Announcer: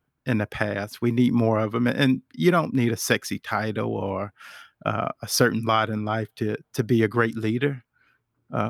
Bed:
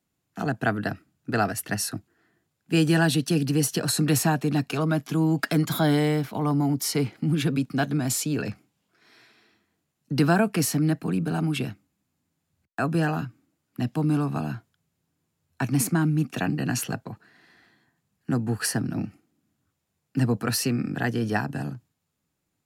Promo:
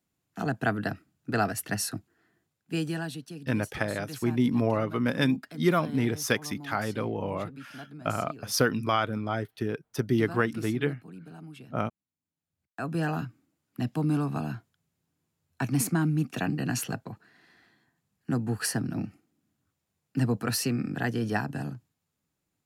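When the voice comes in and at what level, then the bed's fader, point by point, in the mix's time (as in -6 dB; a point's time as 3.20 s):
3.20 s, -4.5 dB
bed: 2.42 s -2.5 dB
3.39 s -19.5 dB
12.12 s -19.5 dB
13.14 s -3 dB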